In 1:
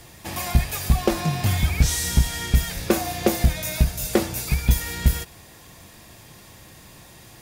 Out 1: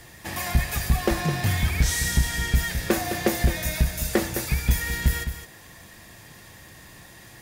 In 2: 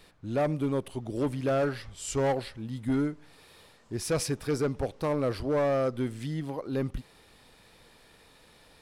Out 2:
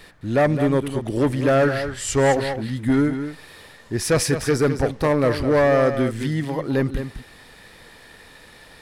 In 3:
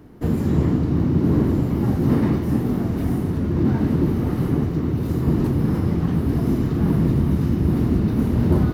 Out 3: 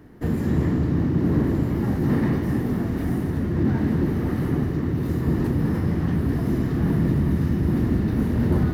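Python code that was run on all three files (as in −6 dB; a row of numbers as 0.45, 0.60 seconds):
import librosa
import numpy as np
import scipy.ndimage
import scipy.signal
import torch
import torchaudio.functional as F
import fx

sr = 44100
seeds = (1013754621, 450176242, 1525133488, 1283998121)

p1 = 10.0 ** (-14.5 / 20.0) * np.tanh(x / 10.0 ** (-14.5 / 20.0))
p2 = x + (p1 * 10.0 ** (-5.0 / 20.0))
p3 = fx.peak_eq(p2, sr, hz=1800.0, db=8.0, octaves=0.33)
p4 = p3 + 10.0 ** (-9.5 / 20.0) * np.pad(p3, (int(211 * sr / 1000.0), 0))[:len(p3)]
y = librosa.util.normalize(p4) * 10.0 ** (-9 / 20.0)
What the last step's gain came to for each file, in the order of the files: −5.5, +5.5, −6.0 decibels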